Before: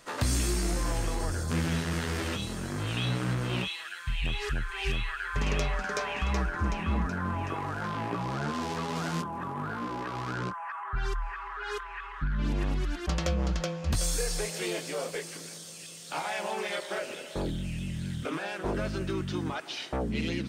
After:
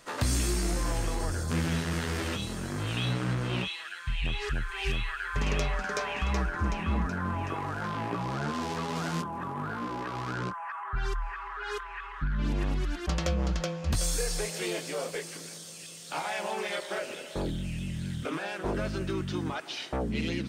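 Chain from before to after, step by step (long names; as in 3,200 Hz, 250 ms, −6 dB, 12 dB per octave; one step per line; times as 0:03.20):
0:03.13–0:04.54: high-shelf EQ 11,000 Hz −9.5 dB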